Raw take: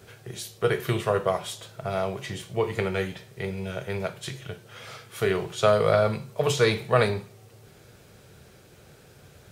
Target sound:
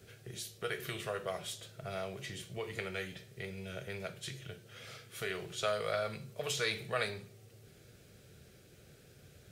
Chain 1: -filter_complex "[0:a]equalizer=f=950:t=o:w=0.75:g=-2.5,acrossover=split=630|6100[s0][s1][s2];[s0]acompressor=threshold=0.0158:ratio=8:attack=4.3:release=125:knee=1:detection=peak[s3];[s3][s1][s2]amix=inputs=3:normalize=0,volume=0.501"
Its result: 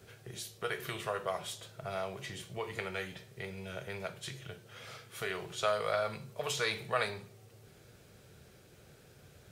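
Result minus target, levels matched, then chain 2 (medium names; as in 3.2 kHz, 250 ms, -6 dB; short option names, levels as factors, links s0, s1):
1 kHz band +3.0 dB
-filter_complex "[0:a]equalizer=f=950:t=o:w=0.75:g=-11.5,acrossover=split=630|6100[s0][s1][s2];[s0]acompressor=threshold=0.0158:ratio=8:attack=4.3:release=125:knee=1:detection=peak[s3];[s3][s1][s2]amix=inputs=3:normalize=0,volume=0.501"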